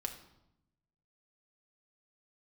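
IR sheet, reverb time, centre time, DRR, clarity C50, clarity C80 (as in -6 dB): 0.85 s, 14 ms, 3.0 dB, 10.0 dB, 12.5 dB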